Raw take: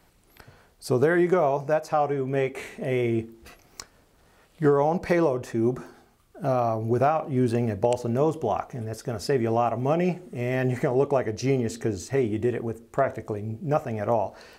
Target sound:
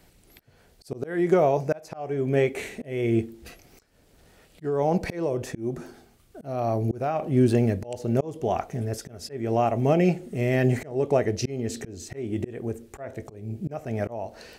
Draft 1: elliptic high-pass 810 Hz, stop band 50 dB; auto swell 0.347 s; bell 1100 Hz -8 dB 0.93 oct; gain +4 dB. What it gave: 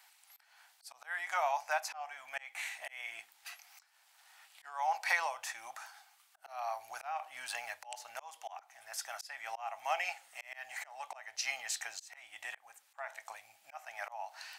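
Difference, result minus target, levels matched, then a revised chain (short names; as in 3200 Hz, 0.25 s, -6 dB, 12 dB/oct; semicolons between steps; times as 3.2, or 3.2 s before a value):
1000 Hz band +7.0 dB
auto swell 0.347 s; bell 1100 Hz -8 dB 0.93 oct; gain +4 dB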